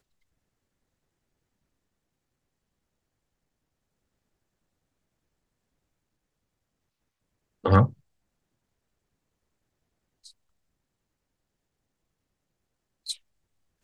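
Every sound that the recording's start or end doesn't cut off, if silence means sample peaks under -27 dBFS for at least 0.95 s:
7.65–7.86

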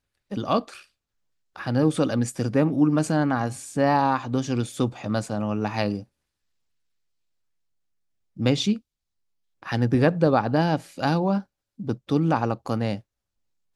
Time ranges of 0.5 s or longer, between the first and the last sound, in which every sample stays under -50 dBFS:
0.85–1.56
6.04–8.36
8.8–9.62

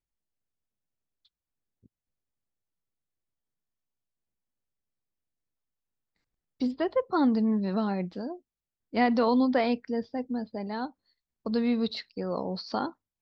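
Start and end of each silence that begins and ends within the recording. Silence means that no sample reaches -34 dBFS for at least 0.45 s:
8.34–8.94
10.86–11.46

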